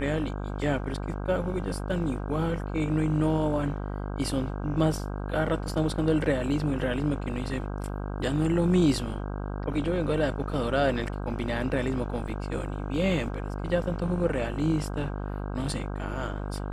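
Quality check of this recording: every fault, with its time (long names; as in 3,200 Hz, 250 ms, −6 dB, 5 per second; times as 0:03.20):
mains buzz 50 Hz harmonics 32 −33 dBFS
0:12.28: drop-out 4.5 ms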